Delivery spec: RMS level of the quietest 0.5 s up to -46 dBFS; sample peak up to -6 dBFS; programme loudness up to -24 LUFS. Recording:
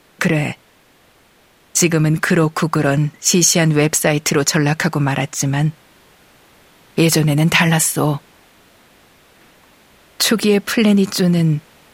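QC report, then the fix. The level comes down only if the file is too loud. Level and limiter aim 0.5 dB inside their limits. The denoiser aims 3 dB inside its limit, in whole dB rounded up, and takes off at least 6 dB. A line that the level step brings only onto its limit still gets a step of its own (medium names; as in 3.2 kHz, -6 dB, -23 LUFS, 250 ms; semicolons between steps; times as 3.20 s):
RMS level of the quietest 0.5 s -52 dBFS: pass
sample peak -1.5 dBFS: fail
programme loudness -15.5 LUFS: fail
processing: trim -9 dB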